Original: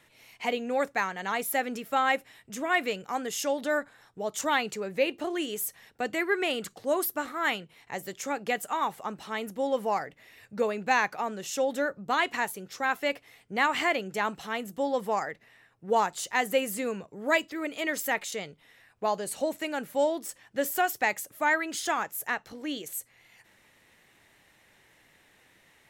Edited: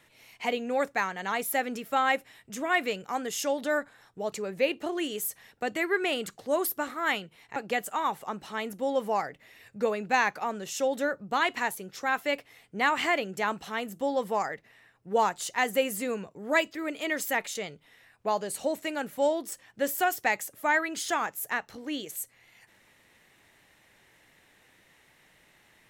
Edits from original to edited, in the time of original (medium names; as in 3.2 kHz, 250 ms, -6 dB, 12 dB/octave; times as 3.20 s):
4.32–4.70 s: delete
7.94–8.33 s: delete